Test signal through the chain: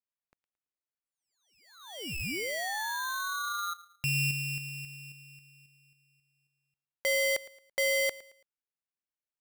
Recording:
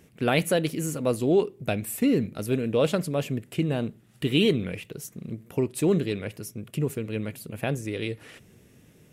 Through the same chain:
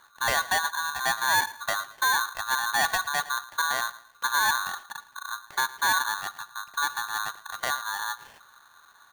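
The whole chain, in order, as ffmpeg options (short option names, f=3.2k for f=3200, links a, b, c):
-af "lowpass=f=1.5k:w=0.5412,lowpass=f=1.5k:w=1.3066,asoftclip=type=tanh:threshold=-17dB,aecho=1:1:111|222|333:0.119|0.0392|0.0129,aeval=exprs='val(0)*sgn(sin(2*PI*1300*n/s))':c=same"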